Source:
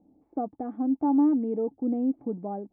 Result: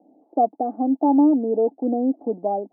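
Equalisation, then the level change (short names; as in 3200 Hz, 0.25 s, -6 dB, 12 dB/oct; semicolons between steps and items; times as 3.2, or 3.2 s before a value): HPF 230 Hz 24 dB/oct; synth low-pass 690 Hz, resonance Q 3.7; +4.5 dB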